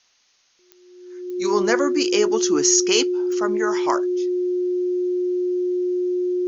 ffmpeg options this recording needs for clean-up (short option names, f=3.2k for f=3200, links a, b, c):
-af "adeclick=t=4,bandreject=f=360:w=30,agate=range=-21dB:threshold=-50dB"